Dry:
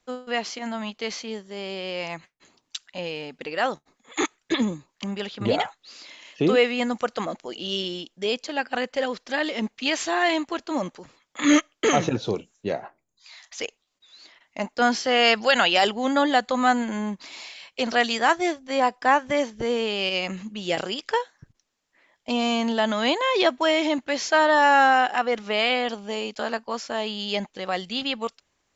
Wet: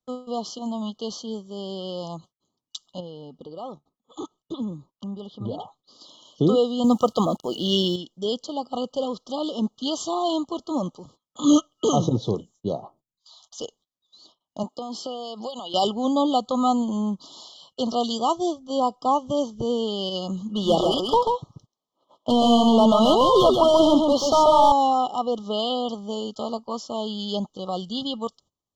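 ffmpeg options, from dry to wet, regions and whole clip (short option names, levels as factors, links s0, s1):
-filter_complex "[0:a]asettb=1/sr,asplit=3[s0][s1][s2];[s0]atrim=end=3.004[s3];[s1]atrim=start=3:end=6.01,asetpts=PTS-STARTPTS,afade=t=in:d=0.004:c=qsin,afade=t=out:st=3.006:d=0.004:c=qsin,lowpass=f=2400:p=1,acompressor=threshold=0.00631:ratio=1.5:attack=3.2:release=140:knee=1:detection=peak[s4];[s2]atrim=start=6.006[s5];[s3][s4]acrossfade=d=0.004:c1=hsin:c2=qsin[s6];[s6][s5]acrossfade=d=0.004:c1=qsin:c2=hsin,asettb=1/sr,asplit=3[s7][s8][s9];[s7]atrim=end=6.844[s10];[s8]atrim=start=6.84:end=7.96,asetpts=PTS-STARTPTS,afade=t=in:d=0.004:c=qsin,afade=t=out:st=1.116:d=0.004:c=qsin,acontrast=78,acrusher=bits=7:mix=0:aa=0.5[s11];[s9]atrim=start=7.956[s12];[s10][s11]acrossfade=d=0.004:c1=hsin:c2=qsin[s13];[s13][s12]acrossfade=d=0.004:c1=qsin:c2=hsin,asettb=1/sr,asplit=3[s14][s15][s16];[s14]atrim=end=14.634[s17];[s15]atrim=start=14.63:end=15.74,asetpts=PTS-STARTPTS,afade=t=in:d=0.004:c=qsin,afade=t=out:st=1.106:d=0.004:c=qsin,highpass=230,acompressor=threshold=0.0501:ratio=10:attack=3.2:release=140:knee=1:detection=peak,equalizer=f=5800:t=o:w=0.21:g=-7.5[s18];[s16]atrim=start=15.736[s19];[s17][s18]acrossfade=d=0.004:c1=hsin:c2=qsin[s20];[s20][s19]acrossfade=d=0.004:c1=qsin:c2=hsin,asettb=1/sr,asplit=3[s21][s22][s23];[s21]atrim=end=20.494[s24];[s22]atrim=start=20.49:end=24.72,asetpts=PTS-STARTPTS,afade=t=in:d=0.004:c=qsin,afade=t=out:st=4.226:d=0.004:c=qsin,asplit=2[s25][s26];[s26]highpass=f=720:p=1,volume=12.6,asoftclip=type=tanh:threshold=0.473[s27];[s25][s27]amix=inputs=2:normalize=0,lowpass=f=1500:p=1,volume=0.501,aecho=1:1:136:0.631,atrim=end_sample=186543[s28];[s23]atrim=start=24.716[s29];[s24][s28]acrossfade=d=0.004:c1=hsin:c2=qsin[s30];[s30][s29]acrossfade=d=0.004:c1=qsin:c2=hsin,afftfilt=real='re*(1-between(b*sr/4096,1300,2900))':imag='im*(1-between(b*sr/4096,1300,2900))':win_size=4096:overlap=0.75,agate=range=0.141:threshold=0.00224:ratio=16:detection=peak,equalizer=f=130:t=o:w=2:g=8.5,volume=0.794"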